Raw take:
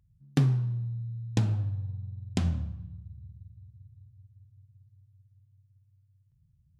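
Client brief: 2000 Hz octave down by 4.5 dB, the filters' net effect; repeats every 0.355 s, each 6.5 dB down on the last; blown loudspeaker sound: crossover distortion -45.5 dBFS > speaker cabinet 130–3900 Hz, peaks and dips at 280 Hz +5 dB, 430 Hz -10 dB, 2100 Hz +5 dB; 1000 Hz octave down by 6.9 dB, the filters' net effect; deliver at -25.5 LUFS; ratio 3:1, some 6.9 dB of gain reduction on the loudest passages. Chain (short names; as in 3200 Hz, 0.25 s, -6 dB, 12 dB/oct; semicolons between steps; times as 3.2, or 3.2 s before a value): bell 1000 Hz -8 dB; bell 2000 Hz -6 dB; compressor 3:1, threshold -29 dBFS; feedback echo 0.355 s, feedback 47%, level -6.5 dB; crossover distortion -45.5 dBFS; speaker cabinet 130–3900 Hz, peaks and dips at 280 Hz +5 dB, 430 Hz -10 dB, 2100 Hz +5 dB; gain +13 dB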